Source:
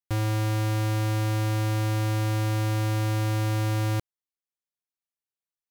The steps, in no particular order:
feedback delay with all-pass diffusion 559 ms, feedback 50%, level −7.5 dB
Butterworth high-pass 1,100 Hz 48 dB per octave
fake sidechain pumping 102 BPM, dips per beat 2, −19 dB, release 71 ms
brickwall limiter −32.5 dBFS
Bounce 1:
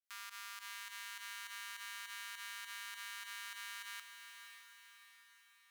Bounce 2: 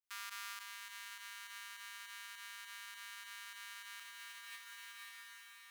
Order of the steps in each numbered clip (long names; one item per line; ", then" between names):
Butterworth high-pass, then brickwall limiter, then fake sidechain pumping, then feedback delay with all-pass diffusion
fake sidechain pumping, then feedback delay with all-pass diffusion, then brickwall limiter, then Butterworth high-pass